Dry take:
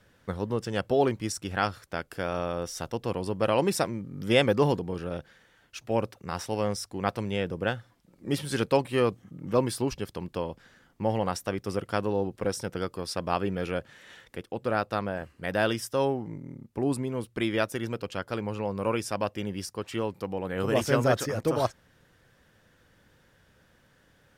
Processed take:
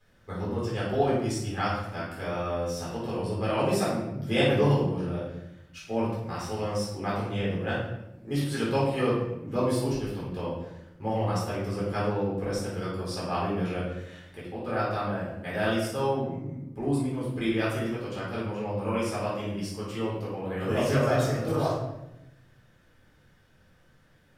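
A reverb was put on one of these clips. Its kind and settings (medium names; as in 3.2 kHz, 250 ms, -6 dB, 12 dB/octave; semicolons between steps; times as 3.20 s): simulated room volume 290 m³, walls mixed, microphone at 3.9 m; trim -11.5 dB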